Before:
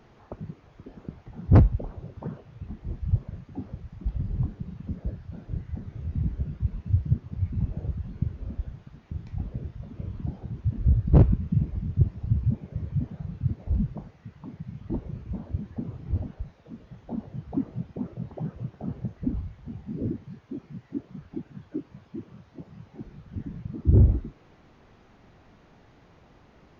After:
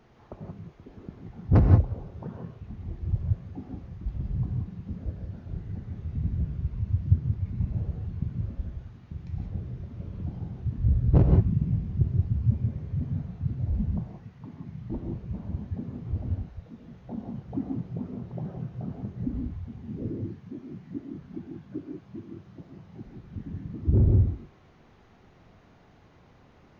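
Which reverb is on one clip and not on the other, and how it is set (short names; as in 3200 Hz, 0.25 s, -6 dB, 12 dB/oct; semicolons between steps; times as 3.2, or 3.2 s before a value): non-linear reverb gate 0.2 s rising, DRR 2 dB; gain -3.5 dB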